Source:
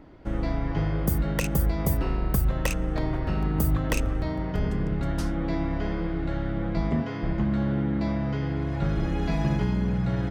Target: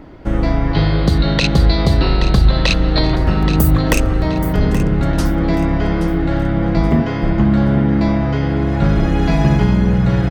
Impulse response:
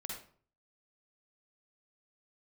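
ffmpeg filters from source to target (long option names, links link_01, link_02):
-filter_complex "[0:a]asettb=1/sr,asplit=3[link_01][link_02][link_03];[link_01]atrim=end=0.734[link_04];[link_02]atrim=start=0.73:end=3.16,asetpts=PTS-STARTPTS,afade=type=in:duration=0.004:curve=qsin,afade=type=out:start_time=2.426:duration=0.004:curve=qsin,lowpass=frequency=4100:width_type=q:width=12[link_05];[link_03]atrim=start=3.156[link_06];[link_04][link_05]acrossfade=duration=0.004:curve1=hsin:curve2=qsin[link_07];[link_07][link_06]acrossfade=duration=0.004:curve1=qsin:curve2=hsin,aecho=1:1:826|1652|2478|3304:0.237|0.0854|0.0307|0.0111,alimiter=level_in=12.5dB:limit=-1dB:release=50:level=0:latency=1,volume=-1dB"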